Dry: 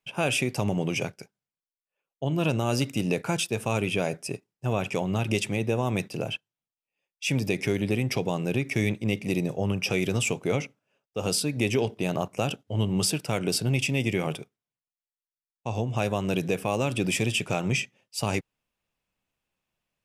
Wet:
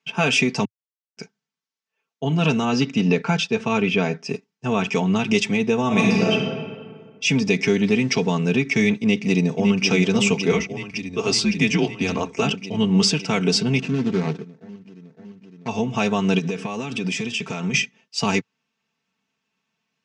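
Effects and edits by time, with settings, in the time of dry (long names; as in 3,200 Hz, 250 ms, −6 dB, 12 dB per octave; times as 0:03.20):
0:00.65–0:01.17: silence
0:02.65–0:04.29: high-frequency loss of the air 100 metres
0:05.86–0:06.32: thrown reverb, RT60 1.8 s, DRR −4 dB
0:07.83–0:08.35: hold until the input has moved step −49 dBFS
0:08.95–0:09.85: delay throw 560 ms, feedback 80%, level −6.5 dB
0:10.51–0:12.42: frequency shifter −83 Hz
0:13.79–0:15.68: running median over 41 samples
0:16.38–0:17.74: downward compressor 10 to 1, threshold −28 dBFS
whole clip: elliptic band-pass filter 110–6,300 Hz, stop band 40 dB; parametric band 590 Hz −9 dB 0.57 octaves; comb filter 4.5 ms, depth 78%; level +7 dB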